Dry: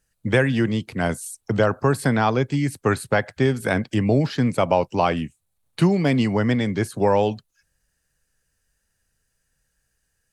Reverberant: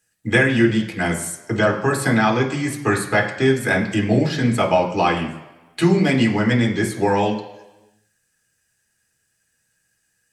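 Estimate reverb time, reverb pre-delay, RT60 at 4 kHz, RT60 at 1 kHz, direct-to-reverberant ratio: 1.1 s, 3 ms, 1.0 s, 1.1 s, 0.0 dB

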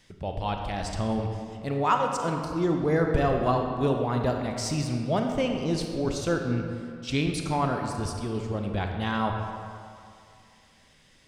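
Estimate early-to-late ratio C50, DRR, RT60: 4.0 dB, 3.0 dB, 2.5 s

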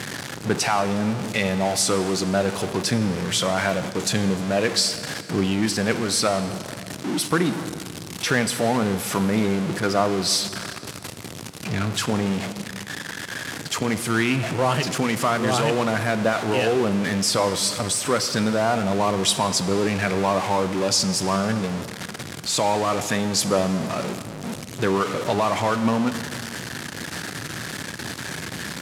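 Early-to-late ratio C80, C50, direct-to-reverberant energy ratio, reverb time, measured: 13.0 dB, 12.0 dB, 11.0 dB, 2.5 s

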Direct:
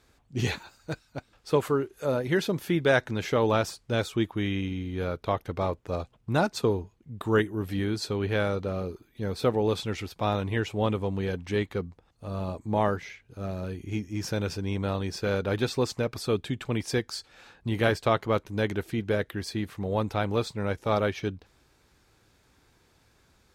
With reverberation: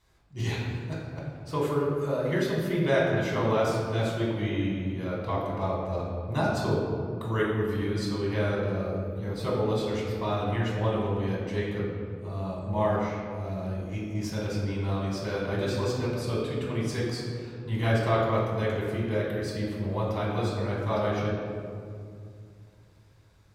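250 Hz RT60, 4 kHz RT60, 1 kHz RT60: 3.2 s, 1.1 s, 2.1 s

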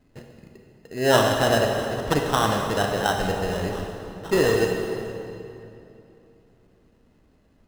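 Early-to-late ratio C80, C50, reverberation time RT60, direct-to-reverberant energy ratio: 4.0 dB, 2.5 dB, 2.9 s, 1.5 dB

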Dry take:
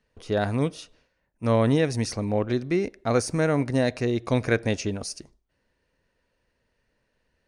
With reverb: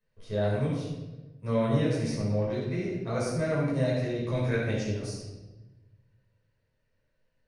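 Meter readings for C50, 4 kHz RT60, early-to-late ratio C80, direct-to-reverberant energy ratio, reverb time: 0.0 dB, 0.85 s, 3.0 dB, −8.0 dB, 1.1 s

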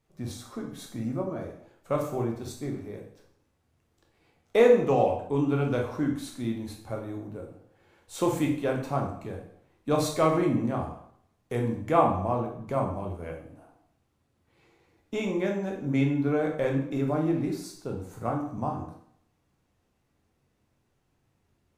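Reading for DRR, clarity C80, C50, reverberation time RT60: −0.5 dB, 9.5 dB, 6.0 dB, 0.65 s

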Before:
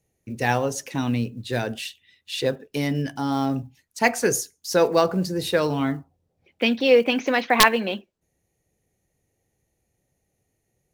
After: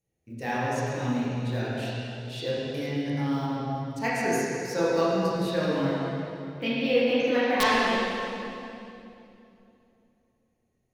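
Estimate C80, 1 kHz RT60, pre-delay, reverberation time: −2.5 dB, 2.6 s, 17 ms, 2.9 s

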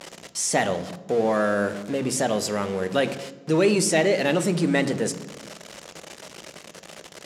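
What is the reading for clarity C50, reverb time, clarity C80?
15.0 dB, 1.2 s, 17.0 dB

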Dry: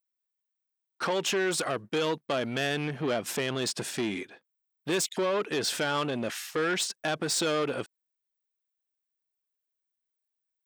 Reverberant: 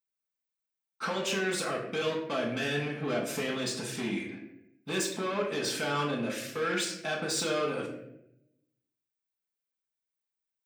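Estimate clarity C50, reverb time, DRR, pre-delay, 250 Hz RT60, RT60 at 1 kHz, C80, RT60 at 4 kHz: 5.5 dB, 0.80 s, −5.0 dB, 5 ms, 1.1 s, 0.65 s, 8.5 dB, 0.50 s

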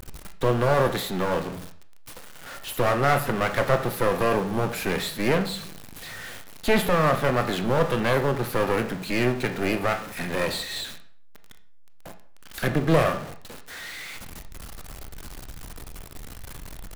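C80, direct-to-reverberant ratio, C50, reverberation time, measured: 15.5 dB, 7.5 dB, 12.0 dB, 0.55 s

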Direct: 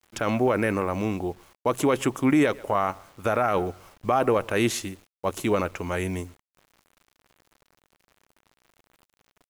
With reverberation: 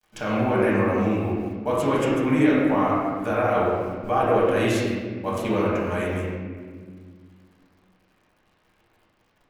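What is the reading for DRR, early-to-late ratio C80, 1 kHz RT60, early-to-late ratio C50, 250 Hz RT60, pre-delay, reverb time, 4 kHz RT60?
−8.0 dB, 0.5 dB, 1.5 s, −1.5 dB, 2.7 s, 4 ms, 1.7 s, 1.1 s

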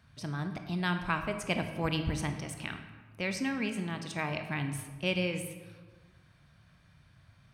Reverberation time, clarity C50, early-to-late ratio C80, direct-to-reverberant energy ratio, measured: 1.4 s, 8.0 dB, 10.0 dB, 6.5 dB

